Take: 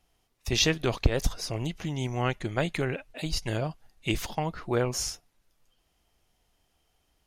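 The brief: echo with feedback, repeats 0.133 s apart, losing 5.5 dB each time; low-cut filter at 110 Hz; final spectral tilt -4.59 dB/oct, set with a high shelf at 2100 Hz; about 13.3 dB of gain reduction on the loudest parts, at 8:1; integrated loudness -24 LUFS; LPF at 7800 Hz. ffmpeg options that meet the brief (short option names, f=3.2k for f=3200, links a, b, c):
-af "highpass=110,lowpass=7.8k,highshelf=f=2.1k:g=-4.5,acompressor=threshold=-35dB:ratio=8,aecho=1:1:133|266|399|532|665|798|931:0.531|0.281|0.149|0.079|0.0419|0.0222|0.0118,volume=15.5dB"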